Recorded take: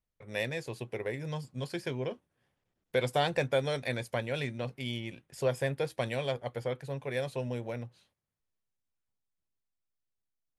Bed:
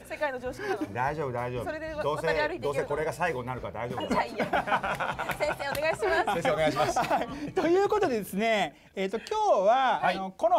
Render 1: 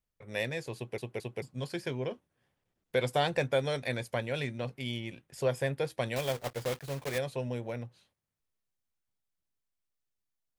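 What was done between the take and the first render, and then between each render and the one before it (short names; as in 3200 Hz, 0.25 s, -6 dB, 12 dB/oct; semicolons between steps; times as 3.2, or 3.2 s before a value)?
0.76 stutter in place 0.22 s, 3 plays; 6.16–7.2 block floating point 3-bit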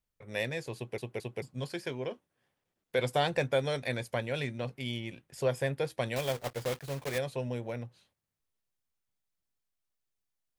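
1.72–2.99 low shelf 150 Hz -9 dB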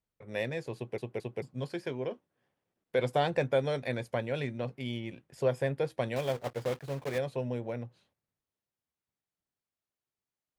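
HPF 270 Hz 6 dB/oct; tilt -2.5 dB/oct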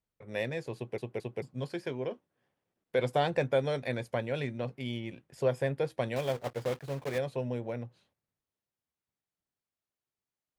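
nothing audible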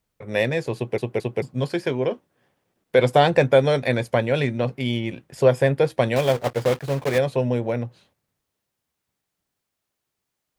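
gain +12 dB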